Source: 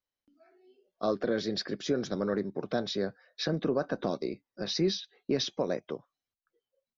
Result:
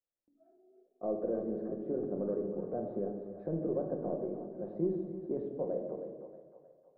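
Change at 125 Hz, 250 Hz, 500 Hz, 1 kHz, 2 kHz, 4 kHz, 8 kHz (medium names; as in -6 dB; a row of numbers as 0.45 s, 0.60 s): -5.0 dB, -4.0 dB, -3.0 dB, -7.5 dB, under -25 dB, under -40 dB, no reading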